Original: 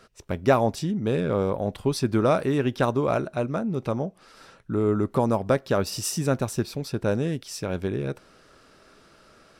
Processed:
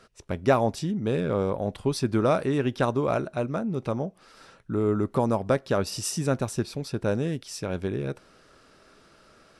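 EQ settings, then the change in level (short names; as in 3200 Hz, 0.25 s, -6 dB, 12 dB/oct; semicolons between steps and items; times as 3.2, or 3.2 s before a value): brick-wall FIR low-pass 12000 Hz; -1.5 dB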